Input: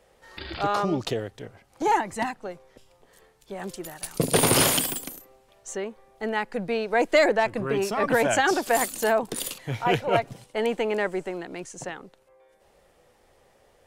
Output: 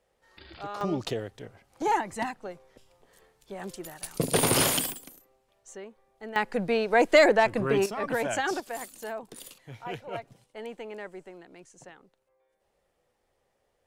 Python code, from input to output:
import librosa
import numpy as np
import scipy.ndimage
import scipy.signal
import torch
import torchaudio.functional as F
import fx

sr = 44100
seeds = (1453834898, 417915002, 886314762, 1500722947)

y = fx.gain(x, sr, db=fx.steps((0.0, -12.5), (0.81, -3.5), (4.92, -11.0), (6.36, 1.0), (7.86, -7.0), (8.6, -14.0)))